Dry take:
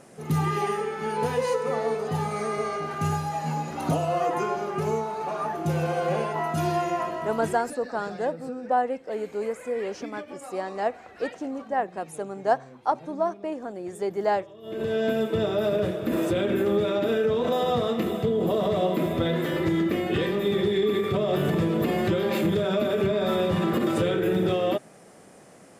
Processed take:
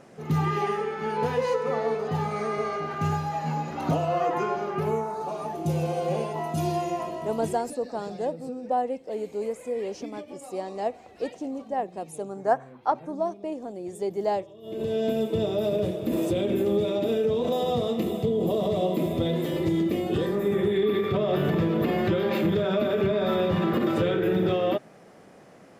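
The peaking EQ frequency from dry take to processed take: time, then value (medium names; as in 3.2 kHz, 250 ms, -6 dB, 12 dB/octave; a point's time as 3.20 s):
peaking EQ -13 dB 0.95 oct
4.72 s 10 kHz
5.37 s 1.5 kHz
12.19 s 1.5 kHz
12.93 s 11 kHz
13.20 s 1.5 kHz
19.97 s 1.5 kHz
21.04 s 9 kHz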